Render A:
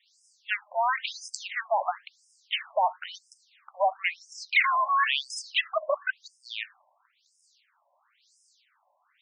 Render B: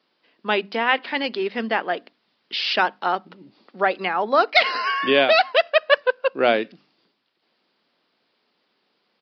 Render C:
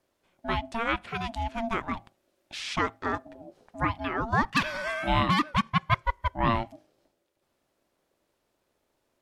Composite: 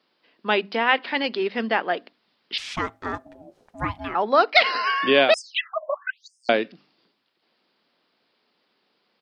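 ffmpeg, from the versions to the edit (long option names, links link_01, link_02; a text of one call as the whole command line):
ffmpeg -i take0.wav -i take1.wav -i take2.wav -filter_complex "[1:a]asplit=3[link_01][link_02][link_03];[link_01]atrim=end=2.582[link_04];[2:a]atrim=start=2.578:end=4.152[link_05];[link_02]atrim=start=4.148:end=5.342[link_06];[0:a]atrim=start=5.338:end=6.492[link_07];[link_03]atrim=start=6.488[link_08];[link_04][link_05]acrossfade=duration=0.004:curve1=hsin:curve2=hsin[link_09];[link_09][link_06]acrossfade=duration=0.004:curve1=hsin:curve2=hsin[link_10];[link_10][link_07]acrossfade=duration=0.004:curve1=hsin:curve2=hsin[link_11];[link_11][link_08]acrossfade=duration=0.004:curve1=hsin:curve2=hsin" out.wav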